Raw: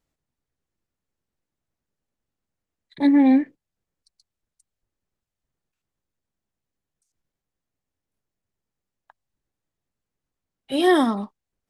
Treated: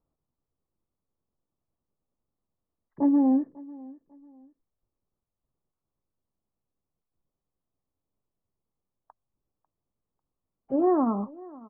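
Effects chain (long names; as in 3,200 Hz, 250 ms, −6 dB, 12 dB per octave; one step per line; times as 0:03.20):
elliptic low-pass filter 1,200 Hz, stop band 80 dB
downward compressor 2.5 to 1, threshold −21 dBFS, peak gain reduction 6 dB
repeating echo 546 ms, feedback 30%, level −21.5 dB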